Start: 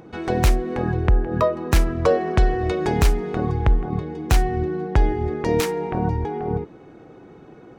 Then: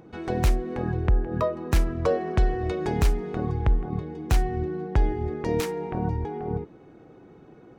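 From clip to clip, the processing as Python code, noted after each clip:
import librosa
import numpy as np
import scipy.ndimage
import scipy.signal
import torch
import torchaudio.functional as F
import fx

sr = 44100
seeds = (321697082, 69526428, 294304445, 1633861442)

y = fx.low_shelf(x, sr, hz=450.0, db=3.0)
y = y * librosa.db_to_amplitude(-7.0)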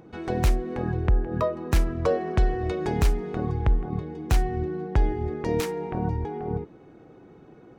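y = x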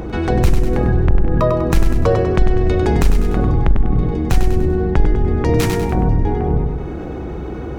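y = fx.octave_divider(x, sr, octaves=2, level_db=3.0)
y = fx.echo_feedback(y, sr, ms=98, feedback_pct=37, wet_db=-7)
y = fx.env_flatten(y, sr, amount_pct=50)
y = y * librosa.db_to_amplitude(2.5)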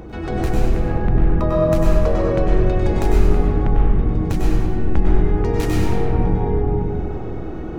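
y = fx.rev_freeverb(x, sr, rt60_s=2.5, hf_ratio=0.4, predelay_ms=75, drr_db=-4.5)
y = y * librosa.db_to_amplitude(-9.0)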